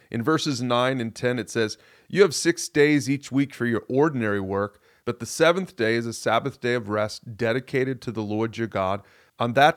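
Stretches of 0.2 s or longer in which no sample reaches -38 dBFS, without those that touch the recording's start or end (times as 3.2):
1.74–2.1
4.68–5.07
9–9.39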